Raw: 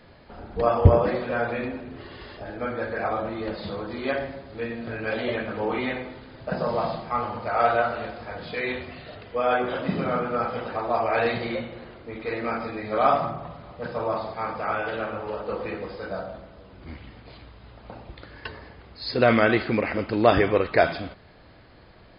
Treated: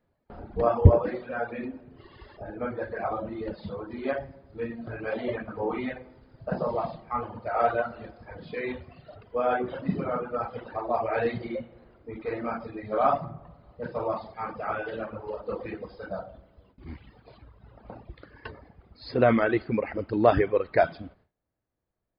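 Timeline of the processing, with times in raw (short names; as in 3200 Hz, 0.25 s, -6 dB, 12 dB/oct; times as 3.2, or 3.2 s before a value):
13.95–17.3 high shelf 3900 Hz +6 dB
whole clip: gate with hold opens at -38 dBFS; reverb removal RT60 2 s; bell 4600 Hz -11 dB 2.7 oct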